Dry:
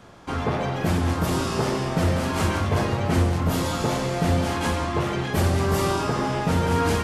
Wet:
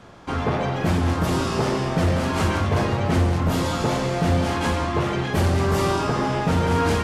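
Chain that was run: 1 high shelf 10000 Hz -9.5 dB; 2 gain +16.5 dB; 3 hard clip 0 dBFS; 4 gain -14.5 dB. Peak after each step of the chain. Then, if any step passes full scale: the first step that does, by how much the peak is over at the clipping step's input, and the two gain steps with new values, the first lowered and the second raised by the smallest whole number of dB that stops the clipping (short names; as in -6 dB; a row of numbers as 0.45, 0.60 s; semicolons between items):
-11.5, +5.0, 0.0, -14.5 dBFS; step 2, 5.0 dB; step 2 +11.5 dB, step 4 -9.5 dB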